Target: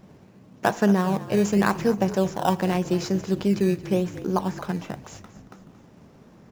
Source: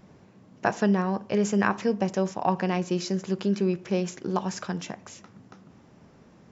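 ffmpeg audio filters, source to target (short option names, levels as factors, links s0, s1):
-filter_complex "[0:a]asettb=1/sr,asplit=3[s0][s1][s2];[s0]atrim=end=3.924[s3];[s1]atrim=start=3.92:end=4.95,asetpts=PTS-STARTPTS,afade=t=in:d=0.004:c=qsin,afade=t=out:st=1.026:d=0.004:c=qsin,acrossover=split=2600[s4][s5];[s5]acompressor=threshold=0.00316:ratio=4:attack=1:release=60[s6];[s4][s6]amix=inputs=2:normalize=0[s7];[s2]atrim=start=4.946[s8];[s3][s7]acrossfade=d=0.004:c1=hsin:c2=qsin[s9];[s9][s8]acrossfade=d=0.004:c1=qsin:c2=hsin,asplit=2[s10][s11];[s11]acrusher=samples=14:mix=1:aa=0.000001:lfo=1:lforange=14:lforate=0.88,volume=0.473[s12];[s10][s12]amix=inputs=2:normalize=0,asplit=5[s13][s14][s15][s16][s17];[s14]adelay=226,afreqshift=-41,volume=0.168[s18];[s15]adelay=452,afreqshift=-82,volume=0.0776[s19];[s16]adelay=678,afreqshift=-123,volume=0.0355[s20];[s17]adelay=904,afreqshift=-164,volume=0.0164[s21];[s13][s18][s19][s20][s21]amix=inputs=5:normalize=0"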